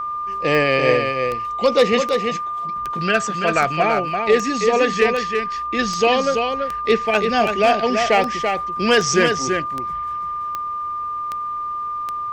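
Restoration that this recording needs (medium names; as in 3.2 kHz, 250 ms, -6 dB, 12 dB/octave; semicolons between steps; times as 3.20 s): de-click; band-stop 1.2 kHz, Q 30; inverse comb 335 ms -5.5 dB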